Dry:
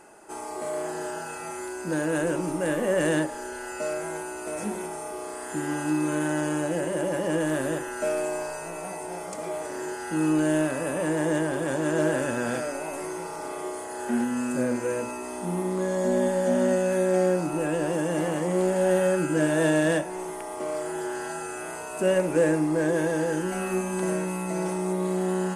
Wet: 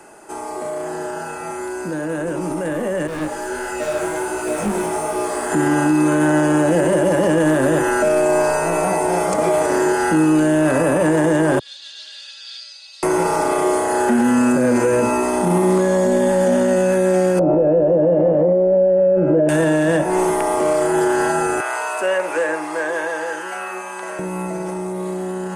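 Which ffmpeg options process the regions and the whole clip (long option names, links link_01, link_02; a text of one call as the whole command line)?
ffmpeg -i in.wav -filter_complex "[0:a]asettb=1/sr,asplit=3[link_01][link_02][link_03];[link_01]atrim=end=3.074[link_04];[link_02]atrim=start=3.07:end=5.52,asetpts=PTS-STARTPTS,afade=type=in:duration=0.004:curve=qsin,afade=type=out:start_time=2.446:duration=0.004:curve=qsin,volume=30.5dB,asoftclip=hard,volume=-30.5dB,flanger=delay=16.5:depth=6.1:speed=1.4[link_05];[link_03]atrim=start=5.516[link_06];[link_04][link_05]acrossfade=duration=0.004:curve1=hsin:curve2=qsin[link_07];[link_07][link_06]acrossfade=duration=0.004:curve1=qsin:curve2=hsin,asettb=1/sr,asplit=3[link_08][link_09][link_10];[link_08]atrim=end=11.594[link_11];[link_09]atrim=start=11.59:end=13.03,asetpts=PTS-STARTPTS,afade=type=in:duration=0.004:curve=qsin,afade=type=out:start_time=1.436:duration=0.004:curve=qsin,asuperpass=centerf=4100:order=4:qfactor=3.7,aecho=1:1:3.6:0.77,atrim=end_sample=63504[link_12];[link_10]atrim=start=13.026[link_13];[link_11][link_12]acrossfade=duration=0.004:curve1=hsin:curve2=qsin[link_14];[link_14][link_13]acrossfade=duration=0.004:curve1=qsin:curve2=hsin,asettb=1/sr,asplit=3[link_15][link_16][link_17];[link_15]atrim=end=17.394[link_18];[link_16]atrim=start=17.39:end=19.49,asetpts=PTS-STARTPTS,afade=type=in:duration=0.004:curve=qsin,afade=type=out:start_time=2.096:duration=0.004:curve=qsin,lowpass=frequency=570:width_type=q:width=6.8,acompressor=mode=upward:threshold=-14dB:ratio=2.5:attack=3.2:release=140:knee=2.83:detection=peak[link_19];[link_17]atrim=start=19.486[link_20];[link_18][link_19]acrossfade=duration=0.004:curve1=hsin:curve2=qsin[link_21];[link_21][link_20]acrossfade=duration=0.004:curve1=qsin:curve2=hsin,asettb=1/sr,asplit=3[link_22][link_23][link_24];[link_22]atrim=end=21.604[link_25];[link_23]atrim=start=21.6:end=24.19,asetpts=PTS-STARTPTS,afade=type=in:duration=0.004:curve=qsin,afade=type=out:start_time=2.586:duration=0.004:curve=qsin,highshelf=frequency=6300:gain=-10.5,acompressor=mode=upward:threshold=-27dB:ratio=2.5:attack=3.2:release=140:knee=2.83:detection=peak,highpass=930[link_26];[link_24]atrim=start=24.186[link_27];[link_25][link_26]acrossfade=duration=0.004:curve1=hsin:curve2=qsin[link_28];[link_28][link_27]acrossfade=duration=0.004:curve1=qsin:curve2=hsin,acrossover=split=120|240|1800[link_29][link_30][link_31][link_32];[link_29]acompressor=threshold=-49dB:ratio=4[link_33];[link_30]acompressor=threshold=-39dB:ratio=4[link_34];[link_31]acompressor=threshold=-29dB:ratio=4[link_35];[link_32]acompressor=threshold=-47dB:ratio=4[link_36];[link_33][link_34][link_35][link_36]amix=inputs=4:normalize=0,alimiter=level_in=2dB:limit=-24dB:level=0:latency=1:release=20,volume=-2dB,dynaudnorm=framelen=350:gausssize=21:maxgain=10dB,volume=7.5dB" out.wav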